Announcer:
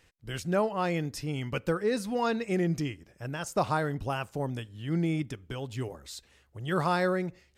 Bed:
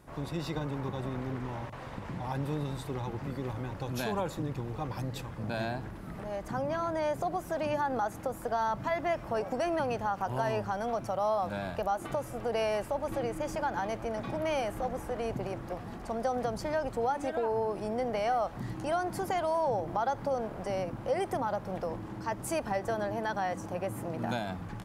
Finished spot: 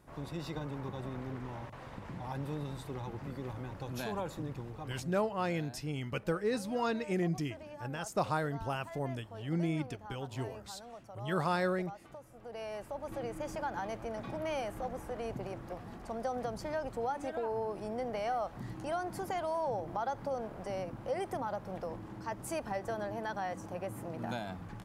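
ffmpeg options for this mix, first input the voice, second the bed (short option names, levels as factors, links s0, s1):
-filter_complex "[0:a]adelay=4600,volume=0.596[s0];[1:a]volume=2.24,afade=t=out:st=4.49:d=0.75:silence=0.251189,afade=t=in:st=12.36:d=1.04:silence=0.251189[s1];[s0][s1]amix=inputs=2:normalize=0"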